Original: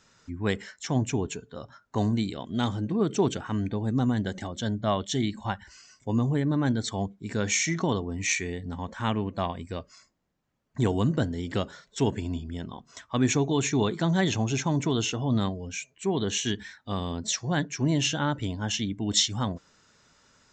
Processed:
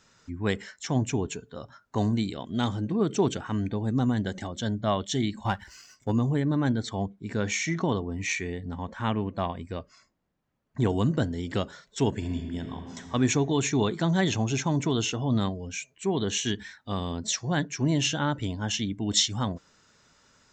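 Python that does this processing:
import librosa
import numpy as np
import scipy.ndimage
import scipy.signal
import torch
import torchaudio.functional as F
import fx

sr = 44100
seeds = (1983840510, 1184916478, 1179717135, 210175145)

y = fx.leveller(x, sr, passes=1, at=(5.45, 6.12))
y = fx.high_shelf(y, sr, hz=5500.0, db=-10.5, at=(6.68, 10.9))
y = fx.reverb_throw(y, sr, start_s=12.1, length_s=0.92, rt60_s=2.8, drr_db=5.0)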